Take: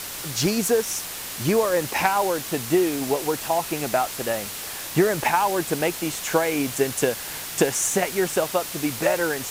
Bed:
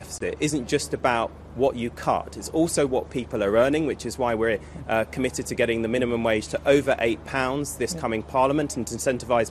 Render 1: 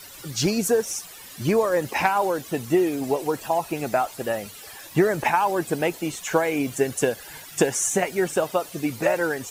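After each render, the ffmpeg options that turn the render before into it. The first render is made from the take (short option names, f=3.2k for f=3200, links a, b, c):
-af "afftdn=nr=14:nf=-34"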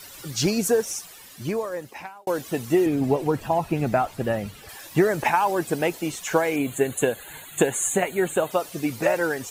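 -filter_complex "[0:a]asettb=1/sr,asplit=3[a][b][c];[a]atrim=end=2.864[d];[b]atrim=start=2.86:end=4.69,asetpts=PTS-STARTPTS,afade=t=in:d=0.004:c=qsin,afade=t=out:st=1.826:d=0.004:c=qsin,bass=f=250:g=11,treble=f=4k:g=-8[e];[c]atrim=start=4.686[f];[d][e]acrossfade=d=0.004:c1=hsin:c2=qsin[g];[g][f]acrossfade=d=0.004:c1=qsin:c2=hsin,asettb=1/sr,asplit=3[h][i][j];[h]atrim=end=6.564[k];[i]atrim=start=6.56:end=8.51,asetpts=PTS-STARTPTS,afade=t=in:d=0.004:c=qsin,afade=t=out:st=1.946:d=0.004:c=qsin,asuperstop=centerf=5300:order=12:qfactor=2.6[l];[j]atrim=start=8.506[m];[k][l]acrossfade=d=0.004:c1=hsin:c2=qsin[n];[n][m]acrossfade=d=0.004:c1=qsin:c2=hsin,asplit=2[o][p];[o]atrim=end=2.27,asetpts=PTS-STARTPTS,afade=t=out:st=0.78:d=1.49[q];[p]atrim=start=2.27,asetpts=PTS-STARTPTS,afade=t=in:d=0.004:c=hsin[r];[q][r]concat=n=2:v=0:a=1"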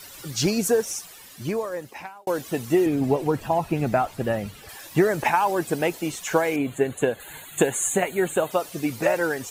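-filter_complex "[0:a]asettb=1/sr,asplit=3[a][b][c];[a]atrim=end=6.564[d];[b]atrim=start=6.56:end=7.2,asetpts=PTS-STARTPTS,afade=t=in:d=0.004:c=qsin,afade=t=out:st=0.636:d=0.004:c=qsin,highshelf=f=4.9k:g=-11[e];[c]atrim=start=7.196[f];[d][e]acrossfade=d=0.004:c1=hsin:c2=qsin[g];[g][f]acrossfade=d=0.004:c1=qsin:c2=hsin"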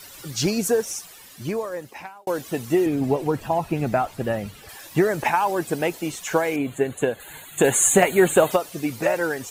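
-filter_complex "[0:a]asplit=3[a][b][c];[a]afade=t=out:st=7.63:d=0.02[d];[b]acontrast=89,afade=t=in:st=7.63:d=0.02,afade=t=out:st=8.55:d=0.02[e];[c]afade=t=in:st=8.55:d=0.02[f];[d][e][f]amix=inputs=3:normalize=0"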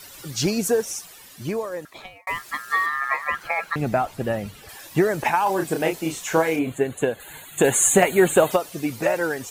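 -filter_complex "[0:a]asettb=1/sr,asplit=3[a][b][c];[a]atrim=end=1.854[d];[b]atrim=start=1.85:end=3.76,asetpts=PTS-STARTPTS,afade=t=in:d=0.004:c=qsin,afade=t=out:st=1.906:d=0.004:c=qsin,aeval=exprs='val(0)*sin(2*PI*1500*n/s)':c=same[e];[c]atrim=start=3.756[f];[d][e]acrossfade=d=0.004:c1=hsin:c2=qsin[g];[g][f]acrossfade=d=0.004:c1=qsin:c2=hsin,asettb=1/sr,asplit=3[h][i][j];[h]atrim=end=5.434[k];[i]atrim=start=5.43:end=6.72,asetpts=PTS-STARTPTS,afade=t=in:d=0.004:c=qsin,afade=t=out:st=1.286:d=0.004:c=qsin,asplit=2[l][m];[m]adelay=31,volume=-5dB[n];[l][n]amix=inputs=2:normalize=0,atrim=end_sample=56889[o];[j]atrim=start=6.716[p];[k][o]acrossfade=d=0.004:c1=hsin:c2=qsin[q];[q][p]acrossfade=d=0.004:c1=qsin:c2=hsin"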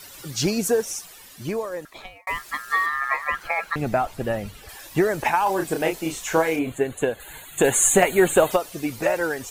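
-af "asubboost=boost=4:cutoff=62"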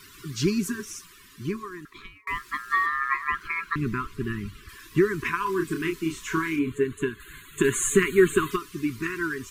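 -af "afftfilt=real='re*(1-between(b*sr/4096,420,970))':imag='im*(1-between(b*sr/4096,420,970))':win_size=4096:overlap=0.75,highshelf=f=3.6k:g=-10"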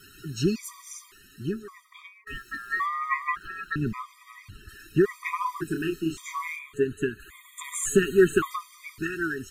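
-af "asoftclip=type=hard:threshold=-9.5dB,afftfilt=real='re*gt(sin(2*PI*0.89*pts/sr)*(1-2*mod(floor(b*sr/1024/630),2)),0)':imag='im*gt(sin(2*PI*0.89*pts/sr)*(1-2*mod(floor(b*sr/1024/630),2)),0)':win_size=1024:overlap=0.75"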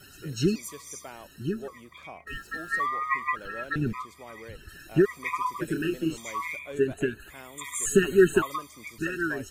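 -filter_complex "[1:a]volume=-22dB[a];[0:a][a]amix=inputs=2:normalize=0"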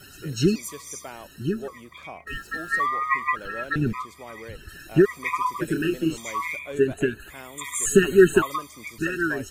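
-af "volume=4dB"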